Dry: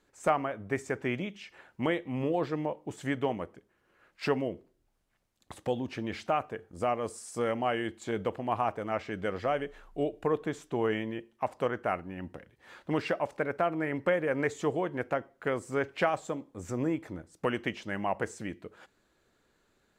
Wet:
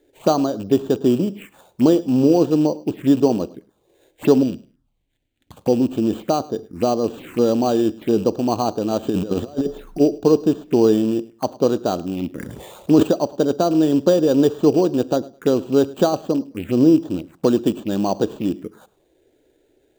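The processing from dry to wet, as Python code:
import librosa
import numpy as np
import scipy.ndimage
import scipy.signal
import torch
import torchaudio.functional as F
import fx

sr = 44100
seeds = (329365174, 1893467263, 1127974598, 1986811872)

y = fx.rattle_buzz(x, sr, strikes_db=-39.0, level_db=-30.0)
y = fx.sample_hold(y, sr, seeds[0], rate_hz=5300.0, jitter_pct=0)
y = fx.env_phaser(y, sr, low_hz=190.0, high_hz=2100.0, full_db=-33.0)
y = fx.curve_eq(y, sr, hz=(260.0, 380.0, 730.0, 1300.0, 3400.0, 5100.0), db=(0, -14, -12, -3, 1, -4), at=(4.43, 5.57))
y = fx.over_compress(y, sr, threshold_db=-38.0, ratio=-0.5, at=(9.02, 9.99), fade=0.02)
y = fx.peak_eq(y, sr, hz=290.0, db=14.0, octaves=1.9)
y = fx.echo_feedback(y, sr, ms=105, feedback_pct=19, wet_db=-21.0)
y = fx.sustainer(y, sr, db_per_s=32.0, at=(12.33, 13.03))
y = y * librosa.db_to_amplitude(5.0)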